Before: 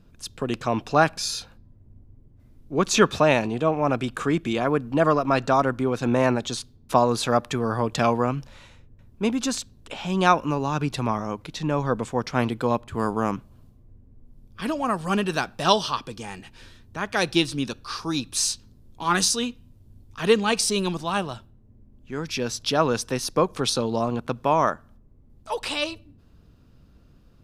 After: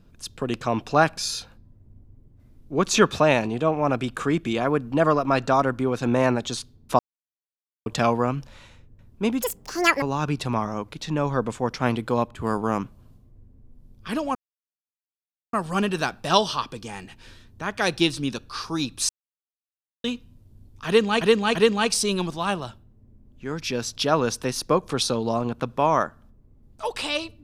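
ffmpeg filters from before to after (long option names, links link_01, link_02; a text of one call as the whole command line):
ffmpeg -i in.wav -filter_complex "[0:a]asplit=10[link_01][link_02][link_03][link_04][link_05][link_06][link_07][link_08][link_09][link_10];[link_01]atrim=end=6.99,asetpts=PTS-STARTPTS,afade=type=out:start_time=6.986:duration=0.004:curve=hsin[link_11];[link_02]atrim=start=6.99:end=7.86,asetpts=PTS-STARTPTS,volume=0[link_12];[link_03]atrim=start=7.86:end=9.424,asetpts=PTS-STARTPTS,afade=type=in:duration=0.004:curve=hsin[link_13];[link_04]atrim=start=9.42:end=10.55,asetpts=PTS-STARTPTS,asetrate=82908,aresample=44100[link_14];[link_05]atrim=start=10.546:end=14.88,asetpts=PTS-STARTPTS,afade=type=out:start_time=4.33:duration=0.004:curve=hsin,apad=pad_dur=1.18[link_15];[link_06]atrim=start=14.88:end=18.44,asetpts=PTS-STARTPTS,afade=type=in:duration=0.004:curve=hsin,afade=type=out:start_time=3.556:duration=0.004:curve=hsin[link_16];[link_07]atrim=start=18.44:end=19.39,asetpts=PTS-STARTPTS,volume=0[link_17];[link_08]atrim=start=19.39:end=20.562,asetpts=PTS-STARTPTS,afade=type=in:duration=0.004:curve=hsin[link_18];[link_09]atrim=start=20.218:end=20.562[link_19];[link_10]atrim=start=20.218[link_20];[link_11][link_12][link_13]concat=n=3:v=0:a=1[link_21];[link_21][link_14]acrossfade=duration=0.004:curve1=hsin:curve2=hsin[link_22];[link_15][link_16][link_17][link_18]concat=n=4:v=0:a=1[link_23];[link_22][link_23]acrossfade=duration=0.004:curve1=hsin:curve2=hsin[link_24];[link_24][link_19]acrossfade=duration=0.004:curve1=hsin:curve2=hsin[link_25];[link_25][link_20]acrossfade=duration=0.004:curve1=hsin:curve2=hsin" out.wav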